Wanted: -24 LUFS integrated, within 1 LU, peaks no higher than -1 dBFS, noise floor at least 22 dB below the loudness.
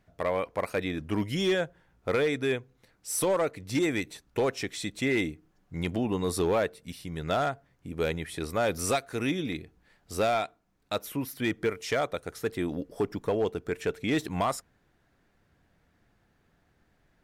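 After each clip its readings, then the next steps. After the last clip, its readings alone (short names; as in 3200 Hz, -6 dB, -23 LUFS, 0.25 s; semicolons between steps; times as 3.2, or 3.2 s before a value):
clipped 0.8%; flat tops at -20.0 dBFS; loudness -30.5 LUFS; peak -20.0 dBFS; loudness target -24.0 LUFS
-> clip repair -20 dBFS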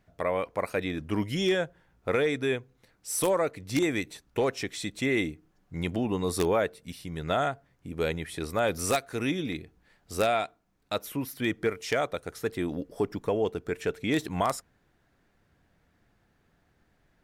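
clipped 0.0%; loudness -30.0 LUFS; peak -11.0 dBFS; loudness target -24.0 LUFS
-> gain +6 dB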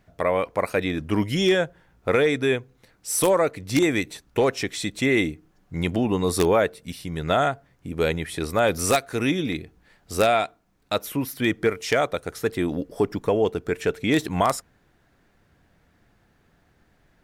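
loudness -24.0 LUFS; peak -5.0 dBFS; noise floor -63 dBFS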